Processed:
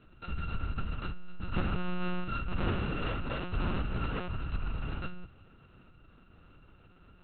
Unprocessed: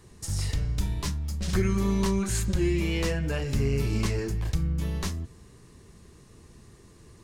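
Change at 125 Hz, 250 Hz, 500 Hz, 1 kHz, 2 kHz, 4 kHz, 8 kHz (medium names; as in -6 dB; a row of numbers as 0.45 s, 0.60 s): -9.0 dB, -9.0 dB, -10.0 dB, +1.0 dB, -3.5 dB, -7.5 dB, under -40 dB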